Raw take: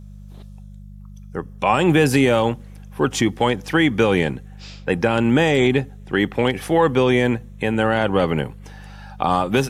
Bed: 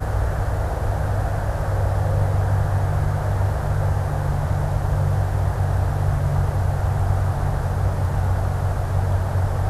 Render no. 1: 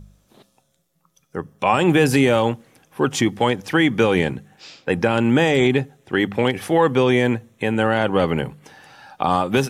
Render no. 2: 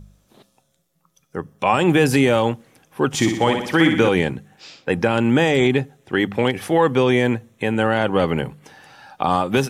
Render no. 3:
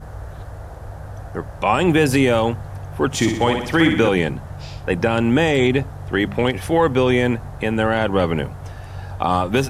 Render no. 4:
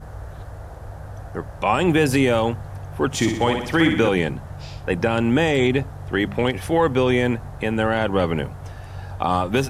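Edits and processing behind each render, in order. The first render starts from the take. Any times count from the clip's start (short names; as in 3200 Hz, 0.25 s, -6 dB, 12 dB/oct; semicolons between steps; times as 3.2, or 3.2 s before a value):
de-hum 50 Hz, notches 4
3.08–4.09 flutter echo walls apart 10.4 m, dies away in 0.66 s
add bed -11.5 dB
gain -2 dB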